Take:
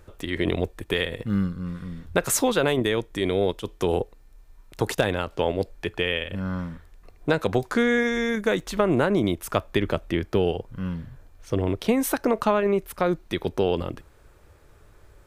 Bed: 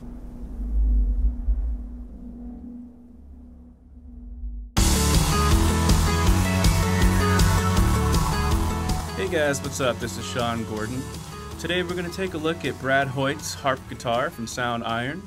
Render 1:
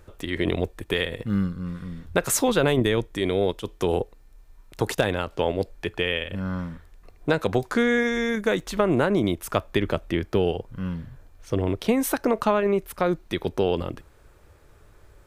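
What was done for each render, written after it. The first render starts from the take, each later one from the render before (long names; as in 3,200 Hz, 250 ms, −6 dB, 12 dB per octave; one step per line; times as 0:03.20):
0:02.48–0:03.07: low-shelf EQ 190 Hz +7 dB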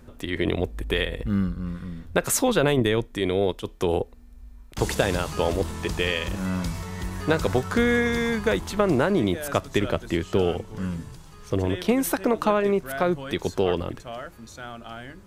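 mix in bed −12.5 dB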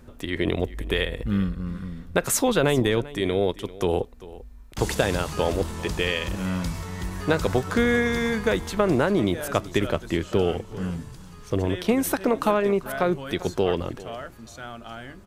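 single-tap delay 393 ms −18.5 dB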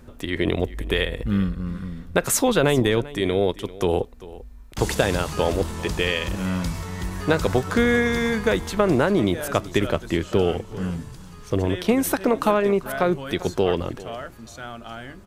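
level +2 dB
brickwall limiter −3 dBFS, peak gain reduction 1 dB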